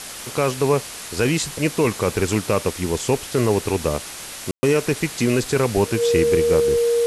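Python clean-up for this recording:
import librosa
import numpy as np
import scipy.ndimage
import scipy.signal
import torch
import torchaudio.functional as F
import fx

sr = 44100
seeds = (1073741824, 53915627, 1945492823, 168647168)

y = fx.notch(x, sr, hz=470.0, q=30.0)
y = fx.fix_ambience(y, sr, seeds[0], print_start_s=0.77, print_end_s=1.27, start_s=4.51, end_s=4.63)
y = fx.noise_reduce(y, sr, print_start_s=3.98, print_end_s=4.48, reduce_db=30.0)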